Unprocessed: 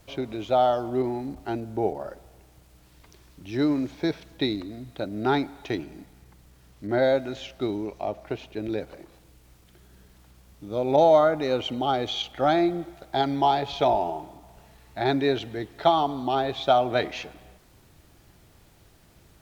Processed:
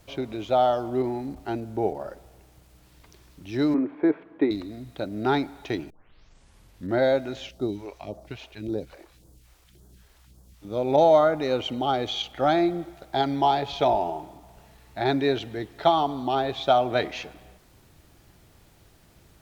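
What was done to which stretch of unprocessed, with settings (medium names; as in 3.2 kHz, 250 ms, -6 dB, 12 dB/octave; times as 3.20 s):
3.74–4.51 s: cabinet simulation 240–2100 Hz, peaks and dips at 300 Hz +9 dB, 430 Hz +5 dB, 1.1 kHz +6 dB
5.90 s: tape start 1.07 s
7.49–10.65 s: phase shifter stages 2, 1.8 Hz, lowest notch 140–2400 Hz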